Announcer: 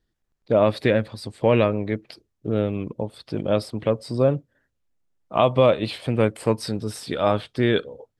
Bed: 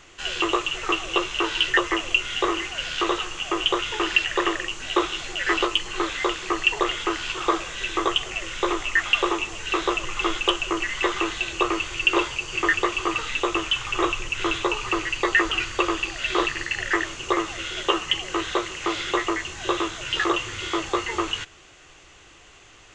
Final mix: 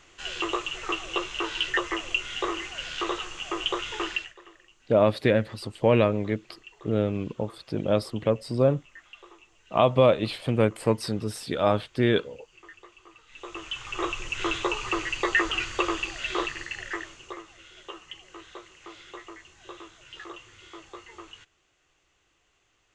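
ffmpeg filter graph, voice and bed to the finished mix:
ffmpeg -i stem1.wav -i stem2.wav -filter_complex "[0:a]adelay=4400,volume=-2dB[link_01];[1:a]volume=18.5dB,afade=type=out:start_time=4.04:duration=0.3:silence=0.0794328,afade=type=in:start_time=13.27:duration=1.15:silence=0.0595662,afade=type=out:start_time=15.95:duration=1.48:silence=0.158489[link_02];[link_01][link_02]amix=inputs=2:normalize=0" out.wav

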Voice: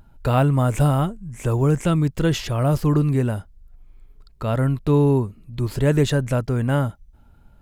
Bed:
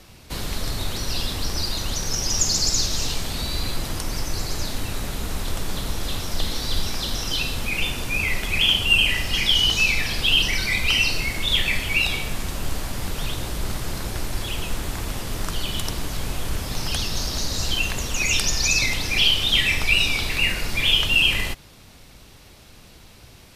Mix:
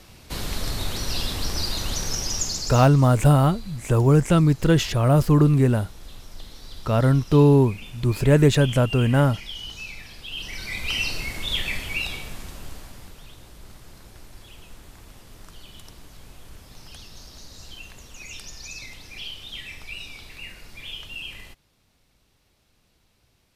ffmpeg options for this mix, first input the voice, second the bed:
ffmpeg -i stem1.wav -i stem2.wav -filter_complex "[0:a]adelay=2450,volume=2dB[link_01];[1:a]volume=11dB,afade=type=out:start_time=2.01:duration=0.89:silence=0.149624,afade=type=in:start_time=10.3:duration=0.74:silence=0.251189,afade=type=out:start_time=11.71:duration=1.51:silence=0.237137[link_02];[link_01][link_02]amix=inputs=2:normalize=0" out.wav

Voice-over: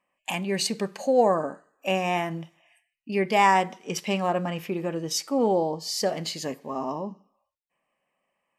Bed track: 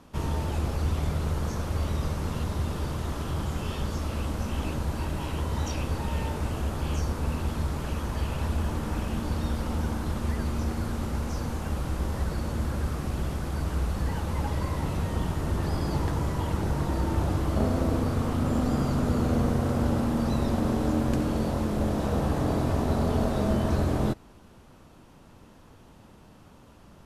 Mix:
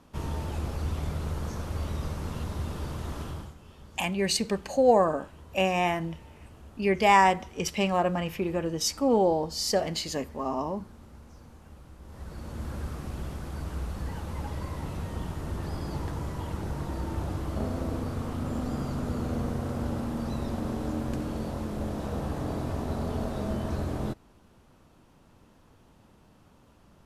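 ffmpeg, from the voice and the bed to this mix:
ffmpeg -i stem1.wav -i stem2.wav -filter_complex "[0:a]adelay=3700,volume=0dB[link_01];[1:a]volume=9.5dB,afade=type=out:start_time=3.22:duration=0.33:silence=0.16788,afade=type=in:start_time=12.02:duration=0.71:silence=0.211349[link_02];[link_01][link_02]amix=inputs=2:normalize=0" out.wav

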